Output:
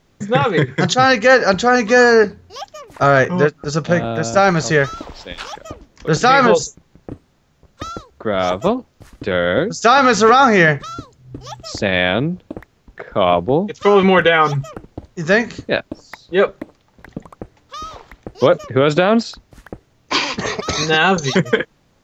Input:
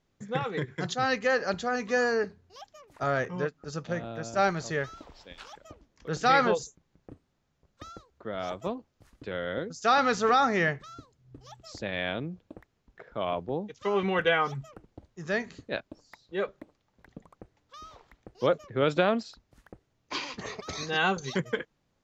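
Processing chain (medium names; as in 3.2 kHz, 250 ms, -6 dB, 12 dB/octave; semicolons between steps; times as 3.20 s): loudness maximiser +17.5 dB; trim -1 dB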